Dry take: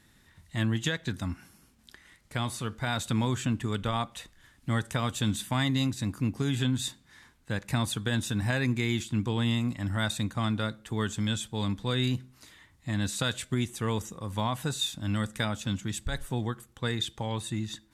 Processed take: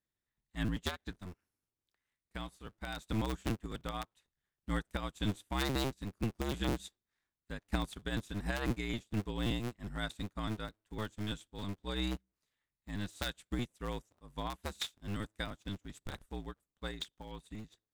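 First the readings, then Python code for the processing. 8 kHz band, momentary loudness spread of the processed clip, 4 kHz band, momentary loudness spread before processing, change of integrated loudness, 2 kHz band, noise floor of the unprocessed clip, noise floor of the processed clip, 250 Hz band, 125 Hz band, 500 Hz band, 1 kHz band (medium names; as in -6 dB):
-13.5 dB, 12 LU, -9.0 dB, 7 LU, -9.0 dB, -8.5 dB, -62 dBFS, under -85 dBFS, -9.0 dB, -11.0 dB, -7.0 dB, -8.0 dB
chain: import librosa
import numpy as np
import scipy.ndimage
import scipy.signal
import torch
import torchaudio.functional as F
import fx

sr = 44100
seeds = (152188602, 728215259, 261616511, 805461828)

y = fx.cycle_switch(x, sr, every=2, mode='inverted')
y = fx.upward_expand(y, sr, threshold_db=-43.0, expansion=2.5)
y = F.gain(torch.from_numpy(y), -3.5).numpy()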